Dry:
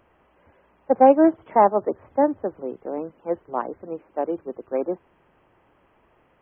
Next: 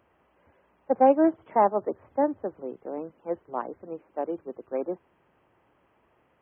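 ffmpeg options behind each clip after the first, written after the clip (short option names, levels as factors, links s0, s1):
-af "highpass=57,volume=0.562"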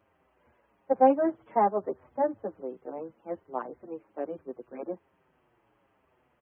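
-filter_complex "[0:a]asplit=2[s0][s1];[s1]adelay=7,afreqshift=-1.2[s2];[s0][s2]amix=inputs=2:normalize=1"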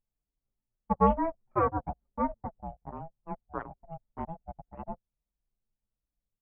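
-af "aeval=exprs='val(0)*sin(2*PI*330*n/s)':c=same,anlmdn=0.1"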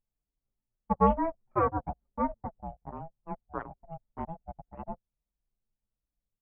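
-af anull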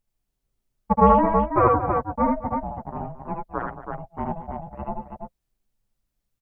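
-af "aecho=1:1:74|82|87|224|328:0.631|0.447|0.106|0.188|0.531,volume=2.24"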